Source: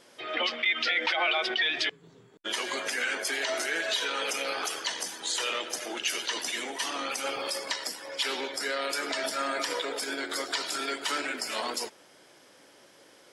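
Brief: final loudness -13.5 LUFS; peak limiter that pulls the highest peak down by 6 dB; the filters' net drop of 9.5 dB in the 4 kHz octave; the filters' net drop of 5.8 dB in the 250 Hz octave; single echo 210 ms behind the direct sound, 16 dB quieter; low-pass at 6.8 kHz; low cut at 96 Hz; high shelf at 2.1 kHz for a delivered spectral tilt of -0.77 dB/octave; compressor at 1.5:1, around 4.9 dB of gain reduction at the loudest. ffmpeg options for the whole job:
-af "highpass=96,lowpass=6800,equalizer=f=250:t=o:g=-7.5,highshelf=f=2100:g=-8,equalizer=f=4000:t=o:g=-4.5,acompressor=threshold=0.00891:ratio=1.5,alimiter=level_in=2.11:limit=0.0631:level=0:latency=1,volume=0.473,aecho=1:1:210:0.158,volume=21.1"

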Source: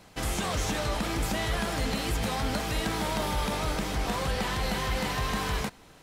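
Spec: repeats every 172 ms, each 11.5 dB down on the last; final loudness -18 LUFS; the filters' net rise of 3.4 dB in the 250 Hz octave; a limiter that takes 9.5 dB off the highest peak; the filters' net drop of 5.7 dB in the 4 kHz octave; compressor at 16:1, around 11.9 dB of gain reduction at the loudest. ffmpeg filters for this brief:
-af "equalizer=f=250:t=o:g=4.5,equalizer=f=4000:t=o:g=-7.5,acompressor=threshold=0.0158:ratio=16,alimiter=level_in=2.99:limit=0.0631:level=0:latency=1,volume=0.335,aecho=1:1:172|344|516:0.266|0.0718|0.0194,volume=16.8"

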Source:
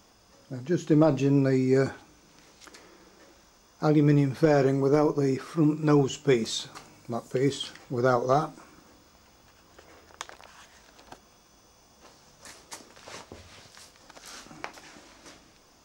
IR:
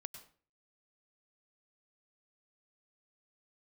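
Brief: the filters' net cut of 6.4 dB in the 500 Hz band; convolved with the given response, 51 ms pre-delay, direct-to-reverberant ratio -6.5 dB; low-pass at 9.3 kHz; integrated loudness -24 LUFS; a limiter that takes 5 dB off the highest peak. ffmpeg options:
-filter_complex "[0:a]lowpass=9300,equalizer=f=500:t=o:g=-8.5,alimiter=limit=0.141:level=0:latency=1,asplit=2[s0][s1];[1:a]atrim=start_sample=2205,adelay=51[s2];[s1][s2]afir=irnorm=-1:irlink=0,volume=3.35[s3];[s0][s3]amix=inputs=2:normalize=0,volume=0.794"

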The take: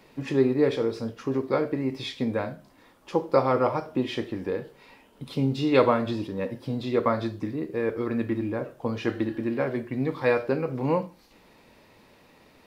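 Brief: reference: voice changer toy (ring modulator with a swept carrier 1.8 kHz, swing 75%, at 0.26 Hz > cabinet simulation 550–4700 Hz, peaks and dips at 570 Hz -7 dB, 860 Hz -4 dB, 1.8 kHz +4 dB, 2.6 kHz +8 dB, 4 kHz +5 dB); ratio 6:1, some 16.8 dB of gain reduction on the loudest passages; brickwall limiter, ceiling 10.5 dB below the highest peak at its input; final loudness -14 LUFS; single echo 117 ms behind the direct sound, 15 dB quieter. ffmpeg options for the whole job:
-af "acompressor=threshold=0.02:ratio=6,alimiter=level_in=2:limit=0.0631:level=0:latency=1,volume=0.501,aecho=1:1:117:0.178,aeval=exprs='val(0)*sin(2*PI*1800*n/s+1800*0.75/0.26*sin(2*PI*0.26*n/s))':c=same,highpass=550,equalizer=f=570:t=q:w=4:g=-7,equalizer=f=860:t=q:w=4:g=-4,equalizer=f=1800:t=q:w=4:g=4,equalizer=f=2600:t=q:w=4:g=8,equalizer=f=4000:t=q:w=4:g=5,lowpass=f=4700:w=0.5412,lowpass=f=4700:w=1.3066,volume=14.1"

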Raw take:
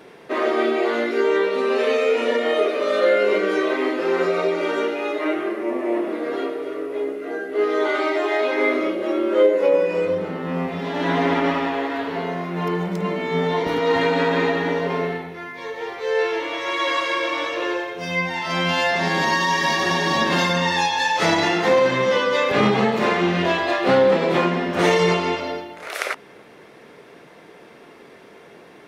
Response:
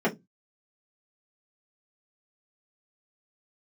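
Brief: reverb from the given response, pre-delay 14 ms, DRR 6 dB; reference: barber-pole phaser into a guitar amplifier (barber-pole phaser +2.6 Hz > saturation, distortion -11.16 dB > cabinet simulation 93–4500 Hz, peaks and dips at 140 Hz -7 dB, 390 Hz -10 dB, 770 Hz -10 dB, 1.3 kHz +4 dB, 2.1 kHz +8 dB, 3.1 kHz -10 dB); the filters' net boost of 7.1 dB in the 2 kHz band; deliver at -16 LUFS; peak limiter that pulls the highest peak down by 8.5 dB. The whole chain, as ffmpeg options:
-filter_complex "[0:a]equalizer=f=2000:t=o:g=3.5,alimiter=limit=0.237:level=0:latency=1,asplit=2[s0][s1];[1:a]atrim=start_sample=2205,adelay=14[s2];[s1][s2]afir=irnorm=-1:irlink=0,volume=0.106[s3];[s0][s3]amix=inputs=2:normalize=0,asplit=2[s4][s5];[s5]afreqshift=2.6[s6];[s4][s6]amix=inputs=2:normalize=1,asoftclip=threshold=0.0891,highpass=93,equalizer=f=140:t=q:w=4:g=-7,equalizer=f=390:t=q:w=4:g=-10,equalizer=f=770:t=q:w=4:g=-10,equalizer=f=1300:t=q:w=4:g=4,equalizer=f=2100:t=q:w=4:g=8,equalizer=f=3100:t=q:w=4:g=-10,lowpass=f=4500:w=0.5412,lowpass=f=4500:w=1.3066,volume=3.55"

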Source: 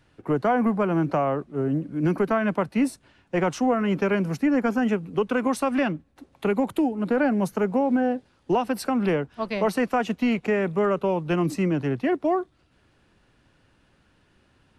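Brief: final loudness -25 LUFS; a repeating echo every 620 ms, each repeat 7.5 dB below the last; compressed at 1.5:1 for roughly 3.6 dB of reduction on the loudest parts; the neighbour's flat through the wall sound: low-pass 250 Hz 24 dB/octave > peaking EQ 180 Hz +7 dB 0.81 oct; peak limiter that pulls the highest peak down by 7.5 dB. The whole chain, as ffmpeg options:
-af "acompressor=threshold=0.0398:ratio=1.5,alimiter=limit=0.0668:level=0:latency=1,lowpass=f=250:w=0.5412,lowpass=f=250:w=1.3066,equalizer=f=180:t=o:w=0.81:g=7,aecho=1:1:620|1240|1860|2480|3100:0.422|0.177|0.0744|0.0312|0.0131,volume=2"

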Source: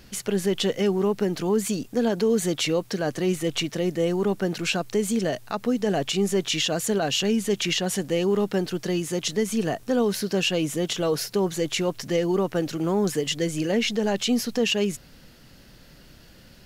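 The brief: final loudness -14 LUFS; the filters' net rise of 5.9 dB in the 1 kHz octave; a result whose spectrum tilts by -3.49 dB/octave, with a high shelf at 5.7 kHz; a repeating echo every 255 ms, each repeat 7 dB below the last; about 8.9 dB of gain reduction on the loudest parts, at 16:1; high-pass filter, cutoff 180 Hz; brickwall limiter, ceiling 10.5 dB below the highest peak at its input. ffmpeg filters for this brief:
-af "highpass=180,equalizer=f=1000:t=o:g=8,highshelf=f=5700:g=4.5,acompressor=threshold=0.0501:ratio=16,alimiter=limit=0.0631:level=0:latency=1,aecho=1:1:255|510|765|1020|1275:0.447|0.201|0.0905|0.0407|0.0183,volume=8.41"

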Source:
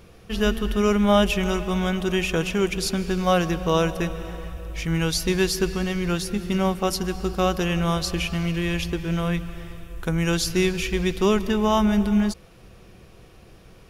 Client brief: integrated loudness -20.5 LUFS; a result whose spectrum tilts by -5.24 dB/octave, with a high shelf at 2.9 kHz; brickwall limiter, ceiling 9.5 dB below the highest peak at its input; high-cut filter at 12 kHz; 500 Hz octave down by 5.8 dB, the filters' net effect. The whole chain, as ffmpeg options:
-af "lowpass=12000,equalizer=f=500:t=o:g=-8,highshelf=f=2900:g=-5.5,volume=2.66,alimiter=limit=0.266:level=0:latency=1"

